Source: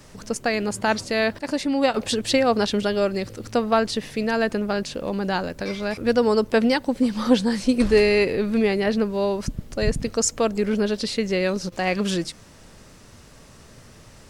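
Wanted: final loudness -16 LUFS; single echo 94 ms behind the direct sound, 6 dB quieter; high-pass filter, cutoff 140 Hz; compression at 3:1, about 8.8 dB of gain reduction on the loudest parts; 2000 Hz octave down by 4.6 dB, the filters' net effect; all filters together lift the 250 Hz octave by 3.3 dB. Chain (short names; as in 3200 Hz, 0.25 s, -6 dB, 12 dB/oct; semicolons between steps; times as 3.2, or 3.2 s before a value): HPF 140 Hz; bell 250 Hz +4.5 dB; bell 2000 Hz -6 dB; compressor 3:1, threshold -22 dBFS; echo 94 ms -6 dB; gain +9 dB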